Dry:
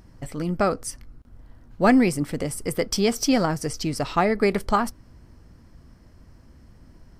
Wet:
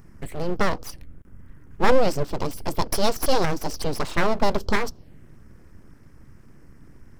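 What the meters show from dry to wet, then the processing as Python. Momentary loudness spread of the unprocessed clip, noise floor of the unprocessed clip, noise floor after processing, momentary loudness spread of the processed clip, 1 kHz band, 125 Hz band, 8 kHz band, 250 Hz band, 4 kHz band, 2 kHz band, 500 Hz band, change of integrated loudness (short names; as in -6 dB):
12 LU, -52 dBFS, -49 dBFS, 11 LU, 0.0 dB, -1.5 dB, -3.5 dB, -7.0 dB, +0.5 dB, +0.5 dB, 0.0 dB, -2.0 dB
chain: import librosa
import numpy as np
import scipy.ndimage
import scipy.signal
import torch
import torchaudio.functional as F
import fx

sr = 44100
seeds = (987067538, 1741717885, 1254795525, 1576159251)

y = fx.env_phaser(x, sr, low_hz=590.0, high_hz=2000.0, full_db=-23.5)
y = np.abs(y)
y = y * 10.0 ** (4.0 / 20.0)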